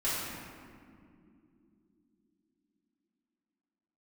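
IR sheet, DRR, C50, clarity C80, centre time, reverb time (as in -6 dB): -12.0 dB, -2.0 dB, 0.5 dB, 0.124 s, not exponential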